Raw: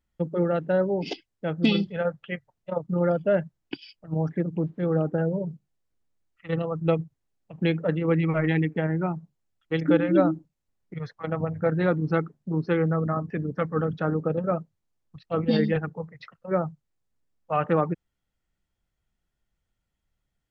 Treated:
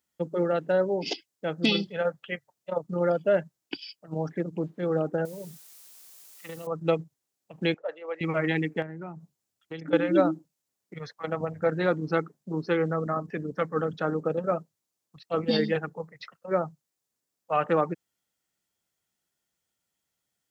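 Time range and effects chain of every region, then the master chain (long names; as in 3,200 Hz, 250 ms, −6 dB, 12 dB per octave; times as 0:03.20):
0:05.25–0:06.67: downward compressor 16 to 1, threshold −32 dBFS + bit-depth reduction 10 bits, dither triangular
0:07.74–0:08.21: four-pole ladder high-pass 510 Hz, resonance 45% + high-frequency loss of the air 67 metres
0:08.82–0:09.93: low-shelf EQ 170 Hz +8.5 dB + downward compressor 4 to 1, threshold −33 dBFS
whole clip: high-pass filter 120 Hz; bass and treble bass −7 dB, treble +10 dB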